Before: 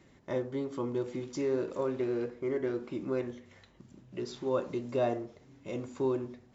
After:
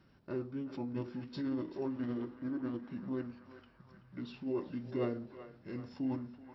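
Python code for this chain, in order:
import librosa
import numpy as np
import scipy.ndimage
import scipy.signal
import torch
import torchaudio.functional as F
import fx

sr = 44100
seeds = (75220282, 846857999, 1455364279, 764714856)

y = fx.formant_shift(x, sr, semitones=-5)
y = fx.echo_banded(y, sr, ms=380, feedback_pct=70, hz=1300.0, wet_db=-10)
y = y * 10.0 ** (-5.0 / 20.0)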